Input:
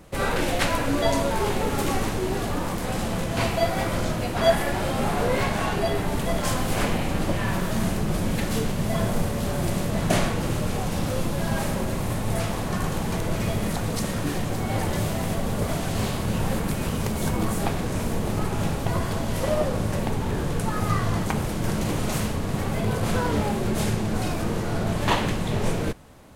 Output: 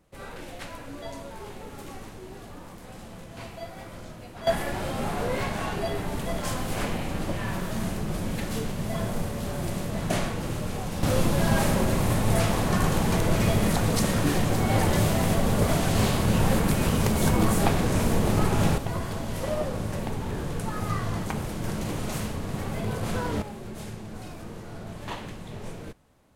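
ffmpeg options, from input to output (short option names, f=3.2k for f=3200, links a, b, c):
-af "asetnsamples=n=441:p=0,asendcmd='4.47 volume volume -5dB;11.03 volume volume 3dB;18.78 volume volume -5dB;23.42 volume volume -13.5dB',volume=-16dB"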